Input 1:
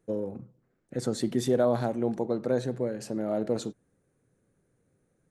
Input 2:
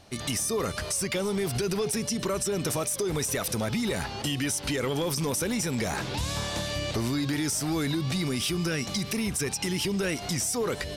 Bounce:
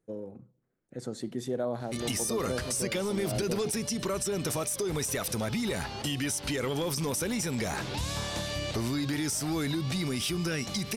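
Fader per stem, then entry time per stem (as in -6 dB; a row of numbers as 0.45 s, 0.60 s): -7.5 dB, -2.5 dB; 0.00 s, 1.80 s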